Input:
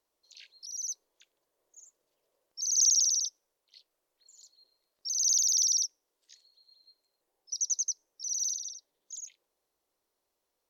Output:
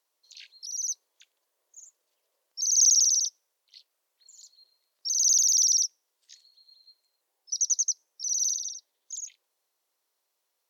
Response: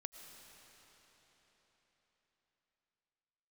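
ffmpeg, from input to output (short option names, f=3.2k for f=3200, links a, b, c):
-filter_complex "[0:a]highpass=f=1.2k:p=1,acrossover=split=1800|4300[a][b][c];[b]alimiter=level_in=13dB:limit=-24dB:level=0:latency=1,volume=-13dB[d];[a][d][c]amix=inputs=3:normalize=0,volume=5dB"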